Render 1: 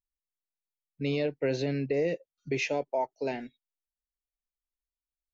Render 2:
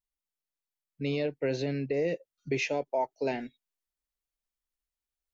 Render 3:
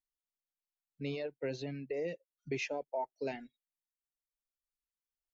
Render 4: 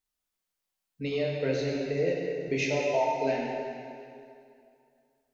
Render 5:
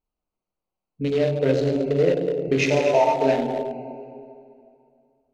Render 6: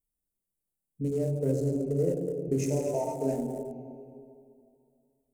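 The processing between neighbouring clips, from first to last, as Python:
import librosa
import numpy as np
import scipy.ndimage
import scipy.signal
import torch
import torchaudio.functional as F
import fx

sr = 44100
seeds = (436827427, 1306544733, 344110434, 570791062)

y1 = fx.rider(x, sr, range_db=3, speed_s=0.5)
y2 = fx.dereverb_blind(y1, sr, rt60_s=1.3)
y2 = y2 * 10.0 ** (-6.5 / 20.0)
y3 = fx.rev_plate(y2, sr, seeds[0], rt60_s=2.5, hf_ratio=0.85, predelay_ms=0, drr_db=-3.0)
y3 = y3 * 10.0 ** (5.5 / 20.0)
y4 = fx.wiener(y3, sr, points=25)
y4 = y4 * 10.0 ** (9.0 / 20.0)
y5 = fx.curve_eq(y4, sr, hz=(150.0, 420.0, 1600.0, 3700.0, 8400.0), db=(0, -5, -21, -25, 12))
y5 = y5 * 10.0 ** (-3.0 / 20.0)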